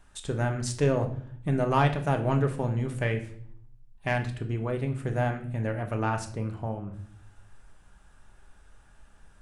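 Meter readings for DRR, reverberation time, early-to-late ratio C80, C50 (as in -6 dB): 4.5 dB, 0.55 s, 14.5 dB, 11.0 dB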